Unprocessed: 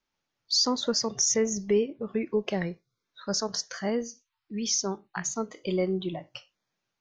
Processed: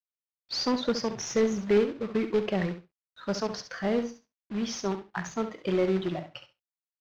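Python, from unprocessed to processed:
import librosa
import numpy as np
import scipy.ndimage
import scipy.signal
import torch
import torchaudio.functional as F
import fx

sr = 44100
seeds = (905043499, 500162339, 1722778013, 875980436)

p1 = fx.highpass(x, sr, hz=59.0, slope=6)
p2 = 10.0 ** (-29.0 / 20.0) * np.tanh(p1 / 10.0 ** (-29.0 / 20.0))
p3 = p1 + (p2 * librosa.db_to_amplitude(-9.5))
p4 = fx.quant_companded(p3, sr, bits=4)
p5 = fx.air_absorb(p4, sr, metres=220.0)
y = fx.echo_feedback(p5, sr, ms=68, feedback_pct=16, wet_db=-10)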